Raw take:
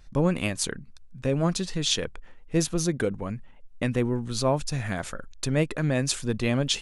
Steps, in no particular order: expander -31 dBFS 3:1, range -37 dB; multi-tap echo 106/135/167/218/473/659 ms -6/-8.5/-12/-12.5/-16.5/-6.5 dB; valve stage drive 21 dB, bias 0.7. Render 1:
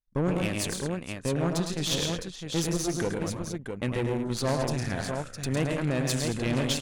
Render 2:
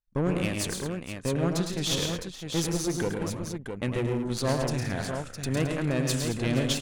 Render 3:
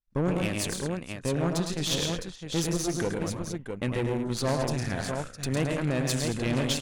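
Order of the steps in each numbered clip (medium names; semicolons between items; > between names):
expander > multi-tap echo > valve stage; expander > valve stage > multi-tap echo; multi-tap echo > expander > valve stage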